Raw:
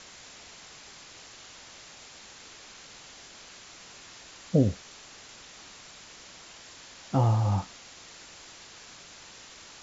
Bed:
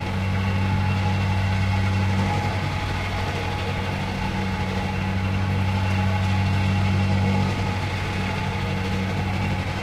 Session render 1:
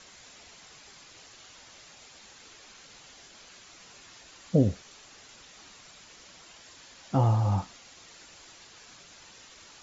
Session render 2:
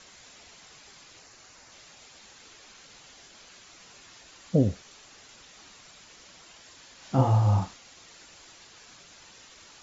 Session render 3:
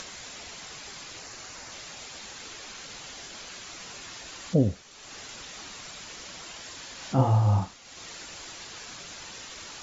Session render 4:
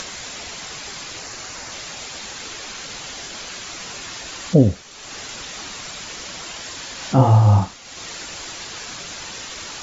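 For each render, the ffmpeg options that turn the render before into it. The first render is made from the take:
-af "afftdn=nr=6:nf=-50"
-filter_complex "[0:a]asettb=1/sr,asplit=3[a][b][c];[a]atrim=end=1.194[d];[b]atrim=start=1.19:end=1.72,asetpts=PTS-STARTPTS,afade=t=in:d=0.004:c=qsin,afade=t=out:st=0.526:d=0.004:c=qsin,equalizer=f=3.3k:t=o:w=0.44:g=-8[e];[c]atrim=start=1.716[f];[d][e]acrossfade=d=0.004:c1=hsin:c2=qsin[g];[g][f]acrossfade=d=0.004:c1=qsin:c2=hsin,asettb=1/sr,asplit=3[h][i][j];[h]atrim=end=6.984[k];[i]atrim=start=6.98:end=7.74,asetpts=PTS-STARTPTS,afade=t=in:d=0.004:c=qsin,afade=t=out:st=0.756:d=0.004:c=qsin,asplit=2[l][m];[m]adelay=38,volume=-2dB[n];[l][n]amix=inputs=2:normalize=0,atrim=end_sample=33516[o];[j]atrim=start=7.736[p];[k][o]acrossfade=d=0.004:c1=hsin:c2=qsin[q];[q][p]acrossfade=d=0.004:c1=qsin:c2=hsin"
-af "acompressor=mode=upward:threshold=-32dB:ratio=2.5"
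-af "volume=9dB,alimiter=limit=-1dB:level=0:latency=1"

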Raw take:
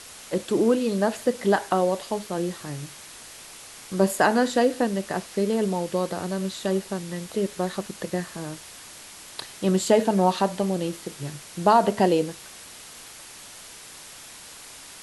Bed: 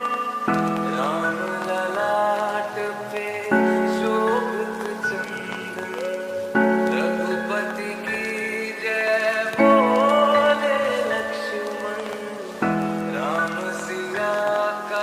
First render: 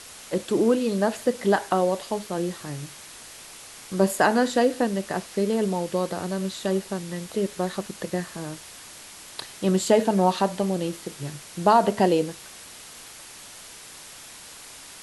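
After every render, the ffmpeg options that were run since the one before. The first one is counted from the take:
-af anull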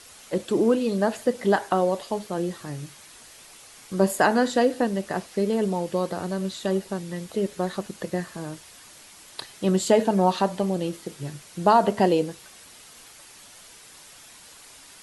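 -af "afftdn=nr=6:nf=-44"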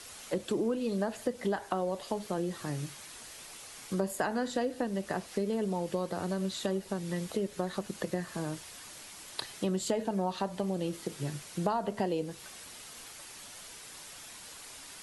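-filter_complex "[0:a]acrossover=split=110[a][b];[a]alimiter=level_in=24dB:limit=-24dB:level=0:latency=1,volume=-24dB[c];[b]acompressor=threshold=-30dB:ratio=4[d];[c][d]amix=inputs=2:normalize=0"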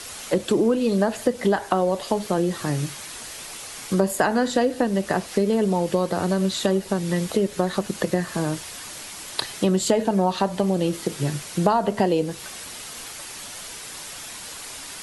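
-af "volume=11dB"

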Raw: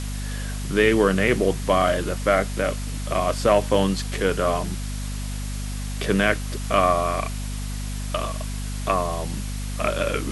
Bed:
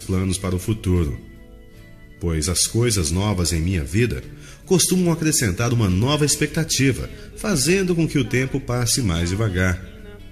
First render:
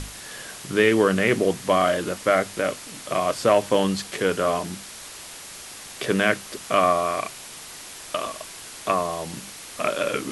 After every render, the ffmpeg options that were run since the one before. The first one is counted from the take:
-af "bandreject=f=50:t=h:w=6,bandreject=f=100:t=h:w=6,bandreject=f=150:t=h:w=6,bandreject=f=200:t=h:w=6,bandreject=f=250:t=h:w=6"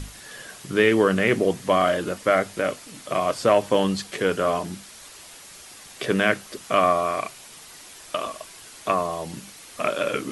-af "afftdn=nr=6:nf=-40"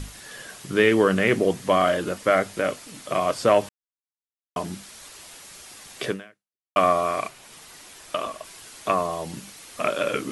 -filter_complex "[0:a]asplit=3[a][b][c];[a]afade=t=out:st=7.27:d=0.02[d];[b]adynamicequalizer=threshold=0.00447:dfrequency=3200:dqfactor=0.7:tfrequency=3200:tqfactor=0.7:attack=5:release=100:ratio=0.375:range=3.5:mode=cutabove:tftype=highshelf,afade=t=in:st=7.27:d=0.02,afade=t=out:st=8.44:d=0.02[e];[c]afade=t=in:st=8.44:d=0.02[f];[d][e][f]amix=inputs=3:normalize=0,asplit=4[g][h][i][j];[g]atrim=end=3.69,asetpts=PTS-STARTPTS,afade=t=out:st=3.686:d=0.004:c=hsin[k];[h]atrim=start=3.69:end=4.56,asetpts=PTS-STARTPTS,volume=0[l];[i]atrim=start=4.56:end=6.76,asetpts=PTS-STARTPTS,afade=t=in:d=0.004:c=hsin,afade=t=out:st=1.52:d=0.68:c=exp[m];[j]atrim=start=6.76,asetpts=PTS-STARTPTS,afade=t=in:d=0.004:c=hsin[n];[k][l][m][n]concat=n=4:v=0:a=1"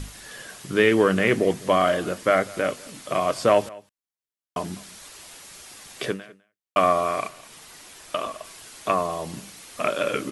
-af "aecho=1:1:203:0.075"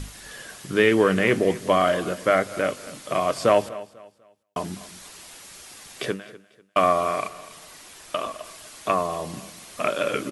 -af "aecho=1:1:247|494|741:0.119|0.0368|0.0114"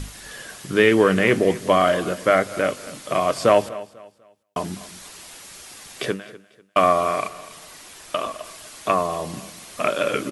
-af "volume=2.5dB"

